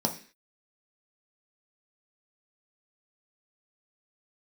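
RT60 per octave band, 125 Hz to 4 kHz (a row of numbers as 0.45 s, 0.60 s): 0.35 s, 0.45 s, 0.40 s, 0.40 s, 0.60 s, no reading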